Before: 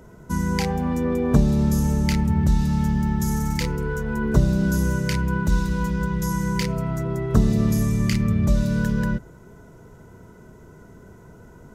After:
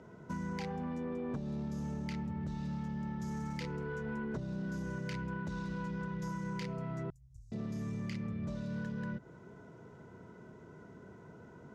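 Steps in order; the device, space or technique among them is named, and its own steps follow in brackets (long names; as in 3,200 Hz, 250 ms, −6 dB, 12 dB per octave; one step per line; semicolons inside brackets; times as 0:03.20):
AM radio (band-pass filter 120–4,400 Hz; downward compressor 6 to 1, threshold −29 dBFS, peak gain reduction 15.5 dB; soft clipping −24.5 dBFS, distortion −21 dB)
0:07.10–0:07.52: inverse Chebyshev band-stop filter 200–3,100 Hz, stop band 50 dB
level −5.5 dB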